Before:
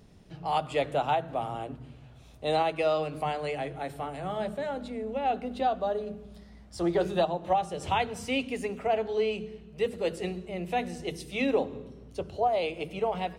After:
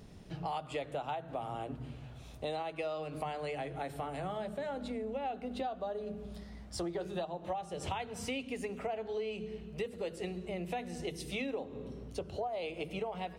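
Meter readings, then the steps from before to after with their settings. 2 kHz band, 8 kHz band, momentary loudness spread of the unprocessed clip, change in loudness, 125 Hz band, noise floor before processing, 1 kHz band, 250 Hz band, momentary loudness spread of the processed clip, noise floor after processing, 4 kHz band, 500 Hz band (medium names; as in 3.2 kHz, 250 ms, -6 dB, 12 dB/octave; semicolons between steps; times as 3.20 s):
-8.0 dB, -2.5 dB, 11 LU, -9.0 dB, -5.0 dB, -52 dBFS, -10.0 dB, -7.0 dB, 6 LU, -50 dBFS, -7.5 dB, -8.5 dB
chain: compression 6:1, threshold -38 dBFS, peak gain reduction 16.5 dB; trim +2.5 dB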